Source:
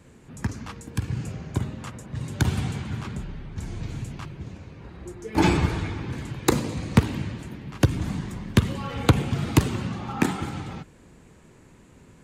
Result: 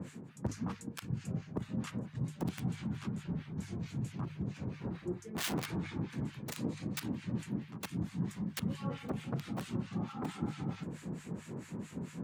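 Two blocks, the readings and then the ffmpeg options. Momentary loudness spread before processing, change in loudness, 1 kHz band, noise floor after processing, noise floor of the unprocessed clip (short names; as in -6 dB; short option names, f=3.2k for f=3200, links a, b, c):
15 LU, -12.5 dB, -15.0 dB, -54 dBFS, -52 dBFS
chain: -filter_complex "[0:a]aeval=exprs='(mod(6.31*val(0)+1,2)-1)/6.31':c=same,highpass=110,equalizer=f=180:t=o:w=1.4:g=9.5,areverse,acompressor=threshold=-41dB:ratio=6,areverse,acrossover=split=1200[a][b];[a]aeval=exprs='val(0)*(1-1/2+1/2*cos(2*PI*4.5*n/s))':c=same[c];[b]aeval=exprs='val(0)*(1-1/2-1/2*cos(2*PI*4.5*n/s))':c=same[d];[c][d]amix=inputs=2:normalize=0,bandreject=f=50:t=h:w=6,bandreject=f=100:t=h:w=6,bandreject=f=150:t=h:w=6,volume=9dB"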